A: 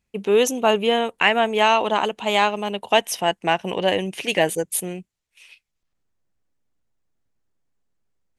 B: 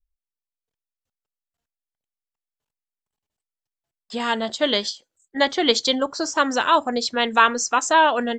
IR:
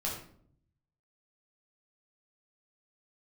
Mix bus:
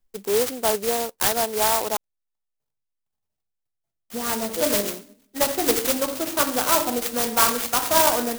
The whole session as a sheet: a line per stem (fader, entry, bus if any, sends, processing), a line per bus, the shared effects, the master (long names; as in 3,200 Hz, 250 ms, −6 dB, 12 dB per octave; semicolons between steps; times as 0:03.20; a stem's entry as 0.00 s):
−3.5 dB, 0.00 s, muted 0:01.97–0:04.55, no send, high-pass filter 280 Hz 12 dB per octave
−5.5 dB, 0.00 s, send −5 dB, no processing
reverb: on, RT60 0.60 s, pre-delay 8 ms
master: converter with an unsteady clock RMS 0.13 ms